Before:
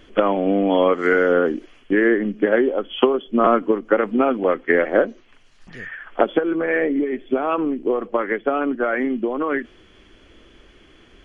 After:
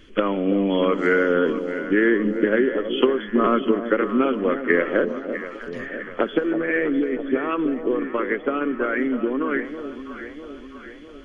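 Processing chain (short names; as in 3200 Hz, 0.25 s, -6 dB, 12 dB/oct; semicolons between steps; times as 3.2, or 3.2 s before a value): bell 750 Hz -12 dB 0.76 oct; echo with dull and thin repeats by turns 0.326 s, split 860 Hz, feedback 74%, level -8.5 dB; on a send at -20.5 dB: reverb RT60 0.65 s, pre-delay 0.1 s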